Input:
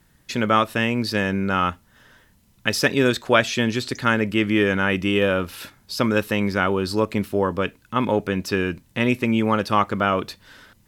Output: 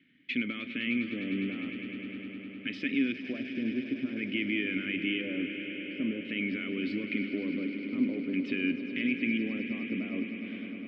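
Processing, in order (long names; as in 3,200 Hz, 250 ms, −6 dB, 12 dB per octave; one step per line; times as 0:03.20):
high-pass filter 100 Hz
in parallel at −2 dB: speech leveller within 5 dB
on the sum: brickwall limiter −12 dBFS, peak gain reduction 14.5 dB
auto-filter low-pass square 0.48 Hz 810–2,600 Hz
formant filter i
on a send: echo that builds up and dies away 102 ms, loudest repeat 5, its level −13.5 dB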